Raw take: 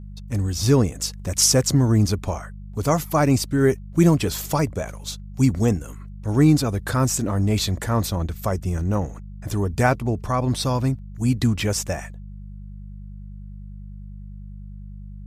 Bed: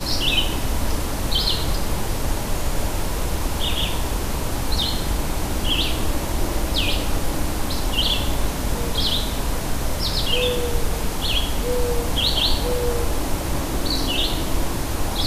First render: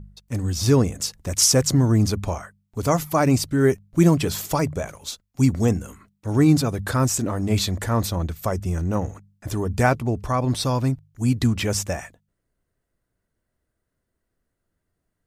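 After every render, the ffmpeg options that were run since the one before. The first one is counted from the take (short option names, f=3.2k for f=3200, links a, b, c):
-af "bandreject=f=50:t=h:w=4,bandreject=f=100:t=h:w=4,bandreject=f=150:t=h:w=4,bandreject=f=200:t=h:w=4"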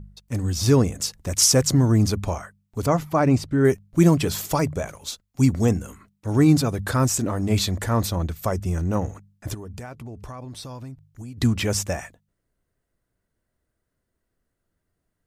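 -filter_complex "[0:a]asettb=1/sr,asplit=3[a][b][c];[a]atrim=end=2.864[d];[b]atrim=start=2.86:end=3.65,asetpts=PTS-STARTPTS,afade=t=in:d=0.004:c=qsin,afade=t=out:st=0.786:d=0.004:c=qsin,lowpass=f=2.1k:p=1[e];[c]atrim=start=3.646[f];[d][e]acrossfade=d=0.004:c1=hsin:c2=qsin[g];[g][f]acrossfade=d=0.004:c1=qsin:c2=hsin,asplit=3[h][i][j];[h]afade=t=out:st=9.53:d=0.02[k];[i]acompressor=threshold=-34dB:ratio=8:attack=3.2:release=140:knee=1:detection=peak,afade=t=in:st=9.53:d=0.02,afade=t=out:st=11.37:d=0.02[l];[j]afade=t=in:st=11.37:d=0.02[m];[k][l][m]amix=inputs=3:normalize=0"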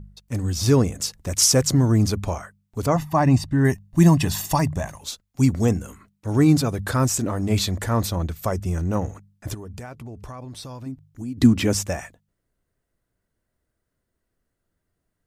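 -filter_complex "[0:a]asettb=1/sr,asplit=3[a][b][c];[a]atrim=end=2.964[d];[b]atrim=start=2.96:end=5.01,asetpts=PTS-STARTPTS,afade=t=in:d=0.004:c=qsin,afade=t=out:st=2.046:d=0.004:c=qsin,aecho=1:1:1.1:0.65,atrim=end_sample=90405[e];[c]atrim=start=5.006[f];[d][e]acrossfade=d=0.004:c1=hsin:c2=qsin[g];[g][f]acrossfade=d=0.004:c1=qsin:c2=hsin,asettb=1/sr,asplit=3[h][i][j];[h]atrim=end=10.864[k];[i]atrim=start=10.86:end=11.75,asetpts=PTS-STARTPTS,afade=t=in:d=0.004:c=qsin,afade=t=out:st=0.886:d=0.004:c=qsin,equalizer=f=270:t=o:w=0.77:g=10.5[l];[j]atrim=start=11.746[m];[k][l]acrossfade=d=0.004:c1=hsin:c2=qsin[n];[n][m]acrossfade=d=0.004:c1=qsin:c2=hsin"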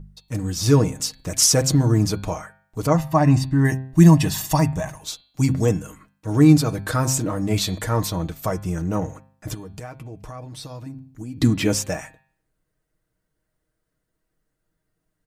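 -af "aecho=1:1:6.4:0.54,bandreject=f=131.6:t=h:w=4,bandreject=f=263.2:t=h:w=4,bandreject=f=394.8:t=h:w=4,bandreject=f=526.4:t=h:w=4,bandreject=f=658:t=h:w=4,bandreject=f=789.6:t=h:w=4,bandreject=f=921.2:t=h:w=4,bandreject=f=1.0528k:t=h:w=4,bandreject=f=1.1844k:t=h:w=4,bandreject=f=1.316k:t=h:w=4,bandreject=f=1.4476k:t=h:w=4,bandreject=f=1.5792k:t=h:w=4,bandreject=f=1.7108k:t=h:w=4,bandreject=f=1.8424k:t=h:w=4,bandreject=f=1.974k:t=h:w=4,bandreject=f=2.1056k:t=h:w=4,bandreject=f=2.2372k:t=h:w=4,bandreject=f=2.3688k:t=h:w=4,bandreject=f=2.5004k:t=h:w=4,bandreject=f=2.632k:t=h:w=4,bandreject=f=2.7636k:t=h:w=4,bandreject=f=2.8952k:t=h:w=4,bandreject=f=3.0268k:t=h:w=4,bandreject=f=3.1584k:t=h:w=4,bandreject=f=3.29k:t=h:w=4,bandreject=f=3.4216k:t=h:w=4,bandreject=f=3.5532k:t=h:w=4,bandreject=f=3.6848k:t=h:w=4,bandreject=f=3.8164k:t=h:w=4,bandreject=f=3.948k:t=h:w=4,bandreject=f=4.0796k:t=h:w=4,bandreject=f=4.2112k:t=h:w=4,bandreject=f=4.3428k:t=h:w=4,bandreject=f=4.4744k:t=h:w=4,bandreject=f=4.606k:t=h:w=4"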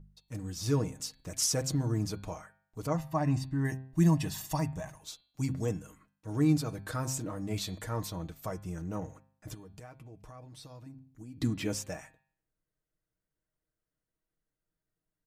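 -af "volume=-13dB"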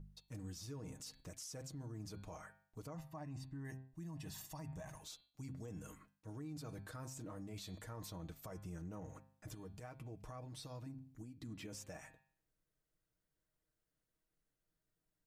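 -af "areverse,acompressor=threshold=-39dB:ratio=8,areverse,alimiter=level_in=16.5dB:limit=-24dB:level=0:latency=1:release=128,volume=-16.5dB"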